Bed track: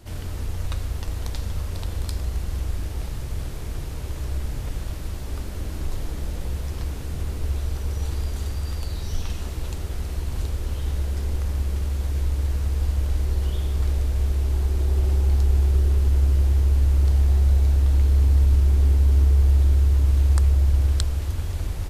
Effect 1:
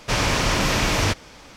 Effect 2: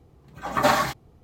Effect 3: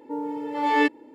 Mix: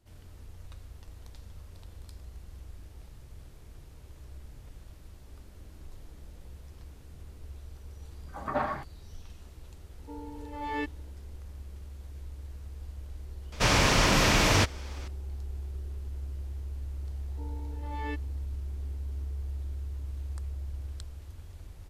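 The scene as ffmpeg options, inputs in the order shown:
ffmpeg -i bed.wav -i cue0.wav -i cue1.wav -i cue2.wav -filter_complex "[3:a]asplit=2[link_01][link_02];[0:a]volume=-19dB[link_03];[2:a]lowpass=1600,atrim=end=1.23,asetpts=PTS-STARTPTS,volume=-9.5dB,afade=type=in:duration=0.004:curve=hsin,afade=type=out:start_time=1.226:duration=0.004:curve=hsin,adelay=7910[link_04];[link_01]atrim=end=1.14,asetpts=PTS-STARTPTS,volume=-13dB,afade=type=in:duration=0.004:curve=hsin,afade=type=out:start_time=1.136:duration=0.004:curve=hsin,adelay=9980[link_05];[1:a]atrim=end=1.56,asetpts=PTS-STARTPTS,volume=-2dB,afade=type=in:duration=0.004:curve=hsin,afade=type=out:start_time=1.556:duration=0.004:curve=hsin,adelay=13520[link_06];[link_02]atrim=end=1.14,asetpts=PTS-STARTPTS,volume=-17.5dB,afade=type=in:duration=0.004:curve=hsin,afade=type=out:start_time=1.136:duration=0.004:curve=hsin,adelay=17280[link_07];[link_03][link_04][link_05][link_06][link_07]amix=inputs=5:normalize=0" out.wav

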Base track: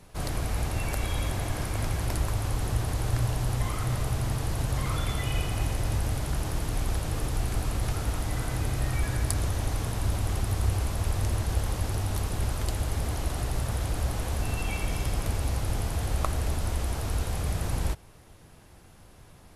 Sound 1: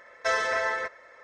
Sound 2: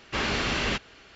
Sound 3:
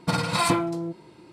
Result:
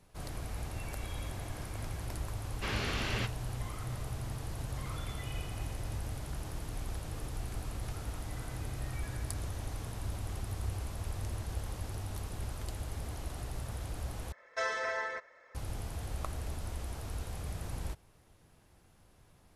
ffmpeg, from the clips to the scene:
ffmpeg -i bed.wav -i cue0.wav -i cue1.wav -filter_complex "[0:a]volume=-10.5dB[link_01];[2:a]flanger=delay=4.4:depth=9.5:regen=72:speed=1.8:shape=sinusoidal[link_02];[link_01]asplit=2[link_03][link_04];[link_03]atrim=end=14.324[link_05];[1:a]atrim=end=1.23,asetpts=PTS-STARTPTS,volume=-8dB[link_06];[link_04]atrim=start=15.546[link_07];[link_02]atrim=end=1.15,asetpts=PTS-STARTPTS,volume=-4.5dB,afade=type=in:duration=0.004:curve=hsin,afade=type=out:start_time=1.146:duration=0.004:curve=hsin,adelay=2490[link_08];[link_05][link_06]acrossfade=duration=0.004:curve1=hsin:curve2=hsin[link_09];[link_09][link_07]acrossfade=duration=0.004:curve1=hsin:curve2=hsin[link_10];[link_10][link_08]amix=inputs=2:normalize=0" out.wav

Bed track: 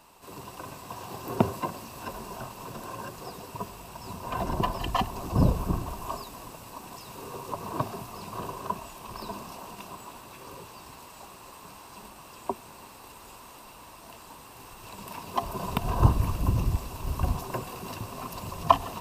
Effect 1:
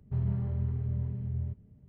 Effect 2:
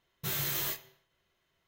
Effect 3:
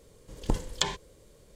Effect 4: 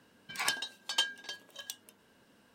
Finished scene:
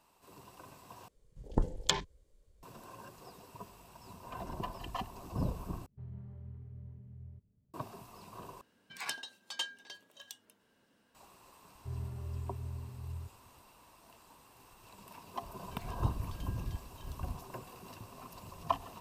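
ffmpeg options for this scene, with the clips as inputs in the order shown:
ffmpeg -i bed.wav -i cue0.wav -i cue1.wav -i cue2.wav -i cue3.wav -filter_complex "[1:a]asplit=2[link_01][link_02];[4:a]asplit=2[link_03][link_04];[0:a]volume=-12.5dB[link_05];[3:a]afwtdn=0.0112[link_06];[link_02]aecho=1:1:2.9:0.96[link_07];[link_04]acompressor=threshold=-43dB:ratio=6:attack=3.2:release=140:knee=1:detection=peak[link_08];[link_05]asplit=4[link_09][link_10][link_11][link_12];[link_09]atrim=end=1.084[link_13];[link_06]atrim=end=1.55,asetpts=PTS-STARTPTS,volume=-2dB[link_14];[link_10]atrim=start=2.626:end=5.864[link_15];[link_01]atrim=end=1.88,asetpts=PTS-STARTPTS,volume=-16.5dB[link_16];[link_11]atrim=start=7.736:end=8.614[link_17];[link_03]atrim=end=2.54,asetpts=PTS-STARTPTS,volume=-7dB[link_18];[link_12]atrim=start=11.146[link_19];[link_07]atrim=end=1.88,asetpts=PTS-STARTPTS,volume=-10.5dB,afade=type=in:duration=0.004:curve=hsin,afade=type=out:start_time=1.876:duration=0.004:curve=hsin,adelay=11740[link_20];[link_08]atrim=end=2.54,asetpts=PTS-STARTPTS,volume=-12.5dB,afade=type=in:duration=0.004:curve=hsin,afade=type=out:start_time=2.536:duration=0.004:curve=hsin,adelay=15420[link_21];[link_13][link_14]acrossfade=duration=0.004:curve1=hsin:curve2=hsin[link_22];[link_22][link_15]acrossfade=duration=0.004:curve1=hsin:curve2=hsin[link_23];[link_23][link_16]acrossfade=duration=0.004:curve1=hsin:curve2=hsin[link_24];[link_24][link_17]acrossfade=duration=0.004:curve1=hsin:curve2=hsin[link_25];[link_25][link_18]acrossfade=duration=0.004:curve1=hsin:curve2=hsin[link_26];[link_26][link_19]acrossfade=duration=0.004:curve1=hsin:curve2=hsin[link_27];[link_27][link_20][link_21]amix=inputs=3:normalize=0" out.wav

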